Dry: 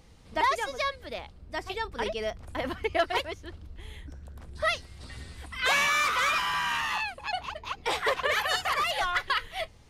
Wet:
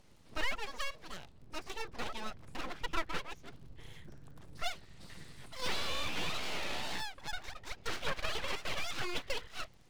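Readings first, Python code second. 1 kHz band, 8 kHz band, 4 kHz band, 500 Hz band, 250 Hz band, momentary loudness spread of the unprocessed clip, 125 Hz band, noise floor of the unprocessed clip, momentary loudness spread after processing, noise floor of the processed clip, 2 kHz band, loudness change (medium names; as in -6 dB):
-14.0 dB, -8.0 dB, -7.5 dB, -12.0 dB, -5.0 dB, 20 LU, -5.5 dB, -52 dBFS, 17 LU, -58 dBFS, -12.5 dB, -11.0 dB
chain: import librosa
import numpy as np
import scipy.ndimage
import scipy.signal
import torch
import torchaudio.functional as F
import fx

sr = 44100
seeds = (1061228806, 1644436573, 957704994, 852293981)

y = fx.env_lowpass_down(x, sr, base_hz=2100.0, full_db=-22.5)
y = fx.dmg_crackle(y, sr, seeds[0], per_s=39.0, level_db=-48.0)
y = np.abs(y)
y = fx.record_warp(y, sr, rpm=33.33, depth_cents=160.0)
y = y * 10.0 ** (-5.5 / 20.0)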